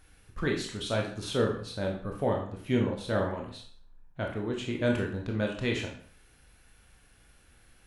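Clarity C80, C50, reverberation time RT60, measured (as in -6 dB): 10.0 dB, 6.0 dB, 0.55 s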